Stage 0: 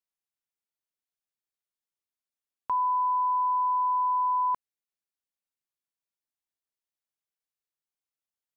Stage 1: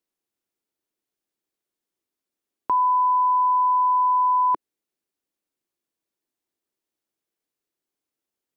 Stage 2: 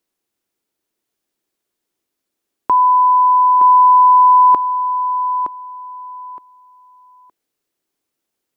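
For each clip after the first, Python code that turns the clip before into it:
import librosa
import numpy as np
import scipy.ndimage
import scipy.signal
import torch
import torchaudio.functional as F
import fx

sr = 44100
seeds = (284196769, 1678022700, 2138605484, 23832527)

y1 = fx.peak_eq(x, sr, hz=330.0, db=13.5, octaves=1.3)
y1 = y1 * librosa.db_to_amplitude(4.5)
y2 = fx.echo_feedback(y1, sr, ms=917, feedback_pct=21, wet_db=-8.5)
y2 = y2 * librosa.db_to_amplitude(8.0)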